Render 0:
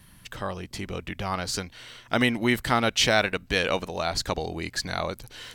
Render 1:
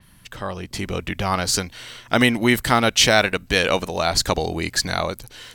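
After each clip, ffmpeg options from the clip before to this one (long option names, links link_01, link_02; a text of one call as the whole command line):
ffmpeg -i in.wav -af "dynaudnorm=framelen=140:gausssize=9:maxgain=6.5dB,adynamicequalizer=threshold=0.0158:dfrequency=5600:dqfactor=0.7:tfrequency=5600:tqfactor=0.7:attack=5:release=100:ratio=0.375:range=2.5:mode=boostabove:tftype=highshelf,volume=1dB" out.wav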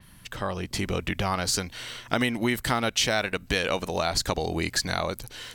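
ffmpeg -i in.wav -af "acompressor=threshold=-24dB:ratio=3" out.wav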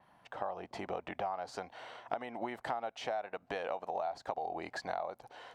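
ffmpeg -i in.wav -af "bandpass=frequency=750:width_type=q:width=4:csg=0,acompressor=threshold=-41dB:ratio=6,volume=7dB" out.wav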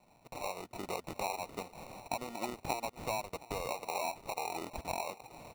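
ffmpeg -i in.wav -af "acrusher=samples=27:mix=1:aa=0.000001,aecho=1:1:719|1438|2157:0.106|0.0455|0.0196" out.wav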